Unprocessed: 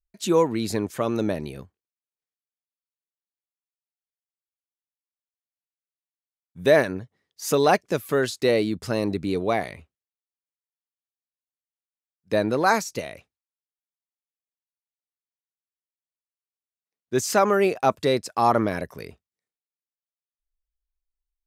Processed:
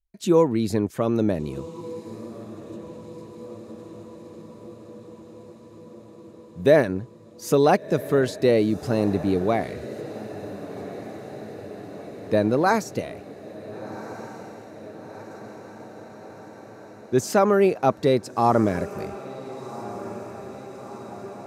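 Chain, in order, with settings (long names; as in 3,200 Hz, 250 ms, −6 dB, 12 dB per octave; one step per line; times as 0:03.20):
tilt shelving filter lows +4.5 dB, about 750 Hz
feedback delay with all-pass diffusion 1,437 ms, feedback 70%, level −15 dB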